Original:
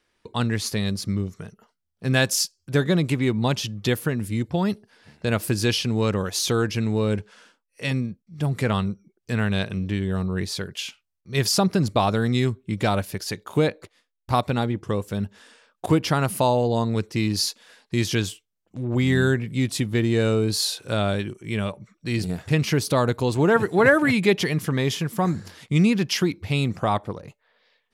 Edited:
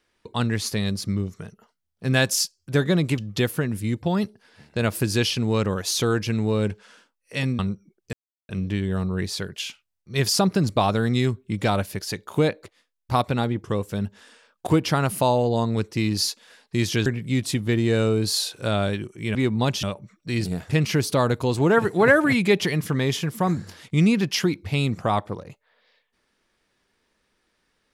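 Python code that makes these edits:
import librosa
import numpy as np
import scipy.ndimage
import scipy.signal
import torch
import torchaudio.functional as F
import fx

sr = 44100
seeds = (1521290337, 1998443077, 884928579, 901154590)

y = fx.edit(x, sr, fx.move(start_s=3.18, length_s=0.48, to_s=21.61),
    fx.cut(start_s=8.07, length_s=0.71),
    fx.silence(start_s=9.32, length_s=0.36),
    fx.cut(start_s=18.25, length_s=1.07), tone=tone)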